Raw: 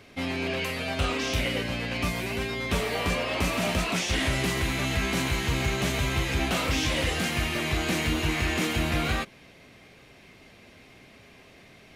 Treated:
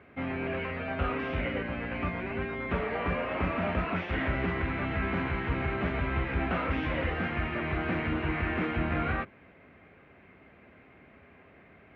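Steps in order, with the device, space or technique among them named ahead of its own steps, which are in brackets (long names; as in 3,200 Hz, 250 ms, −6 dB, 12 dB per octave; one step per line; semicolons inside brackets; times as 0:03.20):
sub-octave bass pedal (sub-octave generator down 1 octave, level −5 dB; loudspeaker in its box 61–2,200 Hz, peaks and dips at 70 Hz +3 dB, 120 Hz −7 dB, 1,400 Hz +4 dB)
level −2.5 dB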